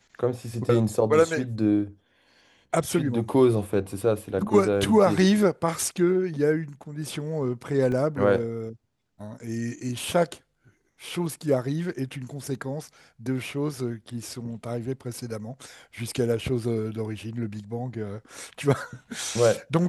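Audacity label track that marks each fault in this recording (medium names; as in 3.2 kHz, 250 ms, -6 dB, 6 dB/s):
7.920000	7.920000	dropout 2.3 ms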